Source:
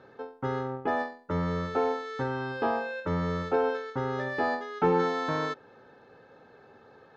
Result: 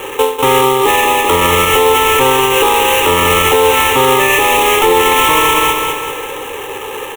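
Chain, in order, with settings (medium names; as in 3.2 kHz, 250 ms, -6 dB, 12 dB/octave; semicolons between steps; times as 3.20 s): high-pass 170 Hz 6 dB/octave; tilt shelf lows -5 dB, about 820 Hz; in parallel at +1.5 dB: compression, threshold -35 dBFS, peak gain reduction 13 dB; on the sum: one-sided clip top -23 dBFS; sample-rate reducer 4.4 kHz, jitter 20%; static phaser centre 1 kHz, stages 8; on a send: feedback delay 194 ms, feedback 51%, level -8.5 dB; on the sum: loudness maximiser +28 dB; trim -1 dB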